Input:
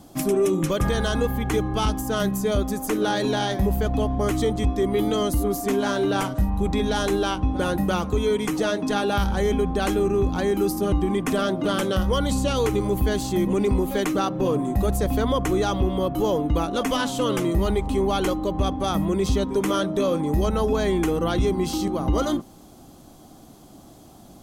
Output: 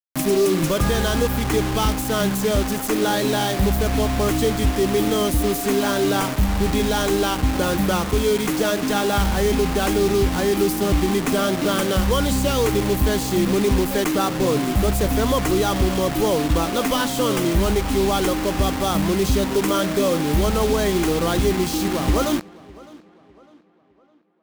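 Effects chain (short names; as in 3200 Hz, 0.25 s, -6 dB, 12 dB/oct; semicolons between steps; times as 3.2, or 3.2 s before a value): 20.88–21.51 de-hum 54.43 Hz, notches 9; bit-crush 5-bit; on a send: tape echo 0.606 s, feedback 45%, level -20.5 dB, low-pass 3300 Hz; on the sum: gain +2.5 dB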